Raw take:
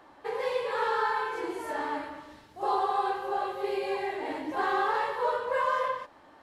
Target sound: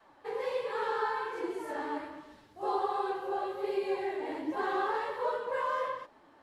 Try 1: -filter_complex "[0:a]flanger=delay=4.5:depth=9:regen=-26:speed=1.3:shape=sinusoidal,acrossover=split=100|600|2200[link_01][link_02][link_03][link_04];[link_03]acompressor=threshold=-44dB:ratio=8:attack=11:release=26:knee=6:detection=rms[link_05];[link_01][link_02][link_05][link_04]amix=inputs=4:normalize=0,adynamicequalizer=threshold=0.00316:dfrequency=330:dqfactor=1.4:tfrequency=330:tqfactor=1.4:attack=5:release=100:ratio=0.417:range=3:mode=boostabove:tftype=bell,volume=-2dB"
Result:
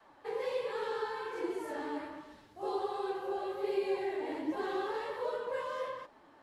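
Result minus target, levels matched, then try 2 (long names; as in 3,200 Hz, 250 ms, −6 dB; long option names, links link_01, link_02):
downward compressor: peak gain reduction +14 dB
-af "flanger=delay=4.5:depth=9:regen=-26:speed=1.3:shape=sinusoidal,adynamicequalizer=threshold=0.00316:dfrequency=330:dqfactor=1.4:tfrequency=330:tqfactor=1.4:attack=5:release=100:ratio=0.417:range=3:mode=boostabove:tftype=bell,volume=-2dB"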